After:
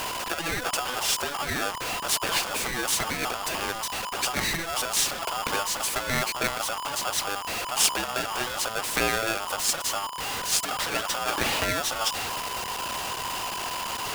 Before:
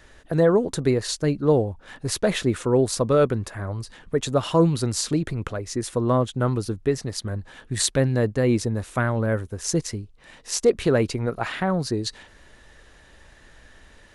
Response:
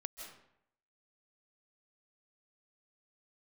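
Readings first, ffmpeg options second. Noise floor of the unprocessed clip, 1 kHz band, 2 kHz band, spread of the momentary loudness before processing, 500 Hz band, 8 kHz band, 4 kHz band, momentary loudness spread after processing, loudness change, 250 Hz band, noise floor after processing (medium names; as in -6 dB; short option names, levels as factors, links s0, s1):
-52 dBFS, +4.0 dB, +6.0 dB, 11 LU, -11.5 dB, +4.0 dB, +6.0 dB, 6 LU, -3.0 dB, -14.0 dB, -34 dBFS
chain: -af "aeval=exprs='val(0)+0.5*0.0501*sgn(val(0))':c=same,afftfilt=real='re*lt(hypot(re,im),0.447)':imag='im*lt(hypot(re,im),0.447)':win_size=1024:overlap=0.75,bandreject=f=60:t=h:w=6,bandreject=f=120:t=h:w=6,aeval=exprs='val(0)*sgn(sin(2*PI*1000*n/s))':c=same"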